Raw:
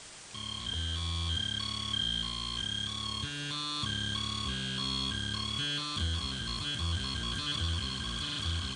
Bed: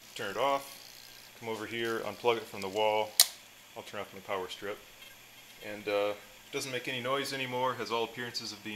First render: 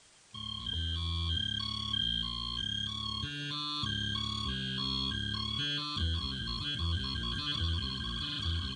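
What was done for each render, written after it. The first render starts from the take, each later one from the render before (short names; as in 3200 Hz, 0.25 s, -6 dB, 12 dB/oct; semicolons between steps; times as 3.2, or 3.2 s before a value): denoiser 12 dB, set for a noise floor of -41 dBFS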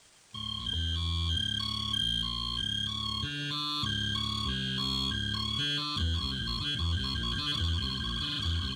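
sample leveller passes 1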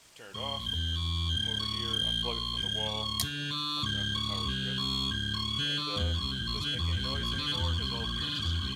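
add bed -11.5 dB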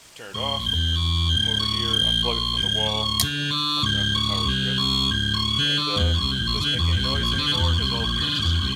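gain +9.5 dB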